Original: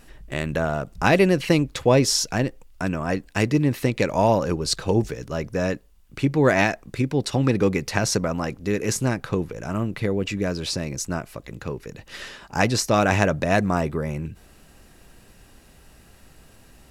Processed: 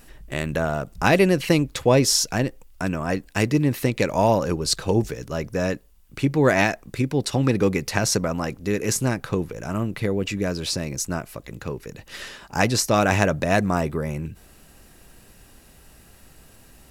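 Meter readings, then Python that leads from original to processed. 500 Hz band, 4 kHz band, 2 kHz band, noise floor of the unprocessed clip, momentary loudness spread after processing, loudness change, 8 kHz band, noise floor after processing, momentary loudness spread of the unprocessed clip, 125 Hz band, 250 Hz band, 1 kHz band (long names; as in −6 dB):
0.0 dB, +1.0 dB, 0.0 dB, −52 dBFS, 14 LU, +0.5 dB, +2.5 dB, −52 dBFS, 14 LU, 0.0 dB, 0.0 dB, 0.0 dB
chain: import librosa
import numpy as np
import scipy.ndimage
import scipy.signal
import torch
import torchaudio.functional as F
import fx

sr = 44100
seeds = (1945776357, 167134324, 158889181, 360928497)

y = fx.high_shelf(x, sr, hz=10000.0, db=8.5)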